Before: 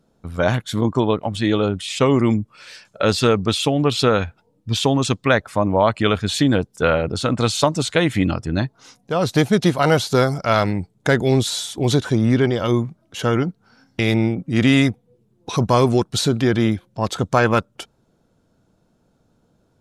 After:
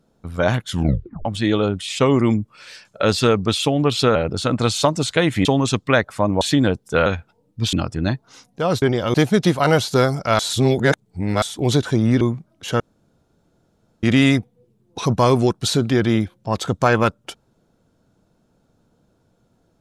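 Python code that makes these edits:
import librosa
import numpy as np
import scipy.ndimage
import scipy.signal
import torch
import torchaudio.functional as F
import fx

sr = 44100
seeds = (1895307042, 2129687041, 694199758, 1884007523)

y = fx.edit(x, sr, fx.tape_stop(start_s=0.67, length_s=0.58),
    fx.swap(start_s=4.15, length_s=0.67, other_s=6.94, other_length_s=1.3),
    fx.cut(start_s=5.78, length_s=0.51),
    fx.reverse_span(start_s=10.58, length_s=1.03),
    fx.move(start_s=12.4, length_s=0.32, to_s=9.33),
    fx.room_tone_fill(start_s=13.31, length_s=1.23), tone=tone)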